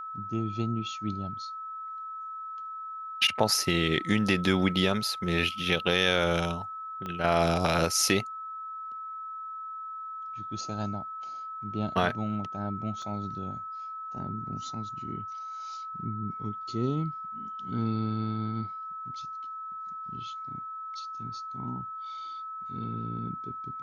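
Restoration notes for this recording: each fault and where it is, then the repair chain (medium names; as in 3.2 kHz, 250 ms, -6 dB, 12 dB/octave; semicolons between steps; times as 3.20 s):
whine 1.3 kHz -36 dBFS
7.06 s: pop -23 dBFS
13.02 s: dropout 2.2 ms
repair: de-click; band-stop 1.3 kHz, Q 30; interpolate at 13.02 s, 2.2 ms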